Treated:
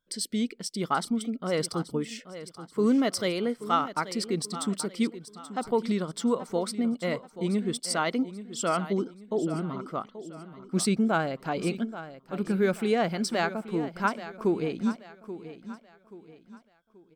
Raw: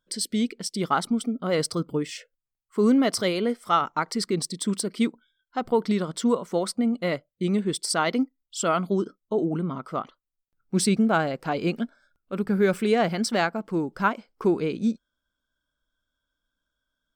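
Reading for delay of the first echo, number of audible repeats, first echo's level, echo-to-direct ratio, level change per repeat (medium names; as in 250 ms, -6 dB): 831 ms, 3, -13.5 dB, -13.0 dB, -8.5 dB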